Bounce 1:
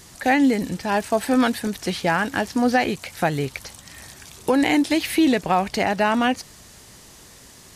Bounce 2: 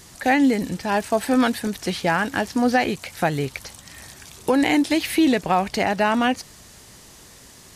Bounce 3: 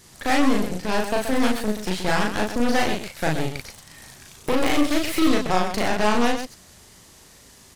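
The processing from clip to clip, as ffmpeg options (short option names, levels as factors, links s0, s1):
-af anull
-filter_complex "[0:a]aeval=exprs='0.447*(cos(1*acos(clip(val(0)/0.447,-1,1)))-cos(1*PI/2))+0.0891*(cos(8*acos(clip(val(0)/0.447,-1,1)))-cos(8*PI/2))':c=same,asplit=2[s0][s1];[s1]aecho=0:1:37.9|128.3:0.794|0.398[s2];[s0][s2]amix=inputs=2:normalize=0,volume=0.531"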